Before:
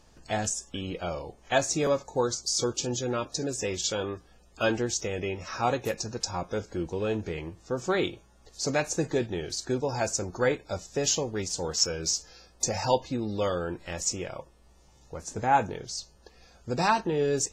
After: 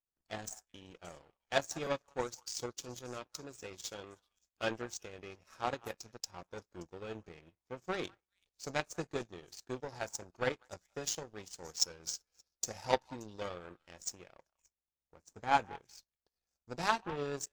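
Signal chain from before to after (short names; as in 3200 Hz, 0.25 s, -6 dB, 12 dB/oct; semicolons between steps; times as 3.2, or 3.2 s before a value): delay with a stepping band-pass 0.192 s, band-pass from 1100 Hz, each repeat 1.4 oct, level -9 dB; power-law curve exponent 2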